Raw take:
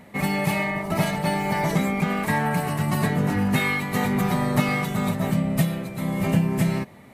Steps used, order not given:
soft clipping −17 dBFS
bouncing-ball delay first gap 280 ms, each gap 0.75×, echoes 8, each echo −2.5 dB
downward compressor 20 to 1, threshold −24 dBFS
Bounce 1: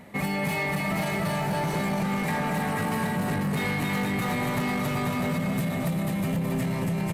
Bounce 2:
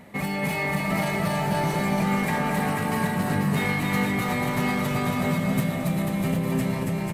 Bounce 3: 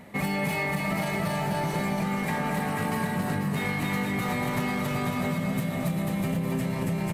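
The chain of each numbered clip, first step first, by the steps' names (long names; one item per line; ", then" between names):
bouncing-ball delay, then soft clipping, then downward compressor
soft clipping, then downward compressor, then bouncing-ball delay
soft clipping, then bouncing-ball delay, then downward compressor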